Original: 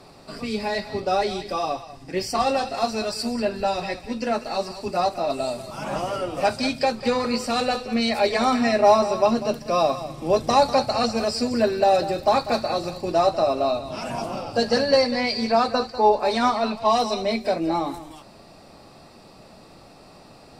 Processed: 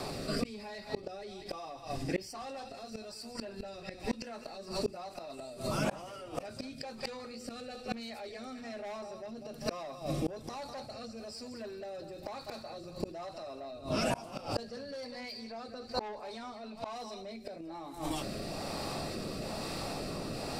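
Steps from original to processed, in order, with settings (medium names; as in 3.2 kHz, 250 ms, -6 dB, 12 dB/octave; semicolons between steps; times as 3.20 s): rotary cabinet horn 1.1 Hz; saturation -18 dBFS, distortion -12 dB; 7.20–9.73 s: band-stop 1 kHz, Q 9.3; treble shelf 8.3 kHz +5.5 dB; hum notches 60/120/180/240/300/360 Hz; inverted gate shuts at -24 dBFS, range -34 dB; level flattener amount 50%; trim +2.5 dB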